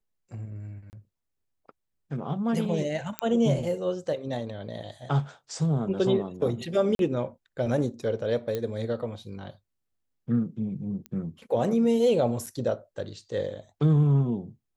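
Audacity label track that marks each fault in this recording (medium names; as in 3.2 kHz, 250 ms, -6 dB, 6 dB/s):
0.900000	0.930000	dropout 29 ms
3.190000	3.190000	pop -12 dBFS
6.950000	6.990000	dropout 42 ms
8.550000	8.550000	pop -17 dBFS
11.060000	11.060000	pop -23 dBFS
12.460000	12.470000	dropout 6.1 ms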